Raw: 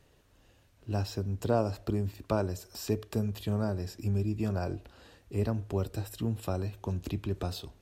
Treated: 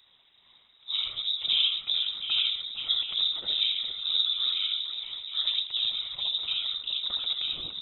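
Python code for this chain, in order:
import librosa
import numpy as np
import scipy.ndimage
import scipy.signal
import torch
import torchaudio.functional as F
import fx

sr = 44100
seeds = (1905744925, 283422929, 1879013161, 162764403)

y = fx.echo_multitap(x, sr, ms=(66, 82, 142, 197, 463, 717), db=(-5.5, -3.5, -16.5, -14.0, -8.5, -10.0))
y = fx.whisperise(y, sr, seeds[0])
y = fx.freq_invert(y, sr, carrier_hz=3800)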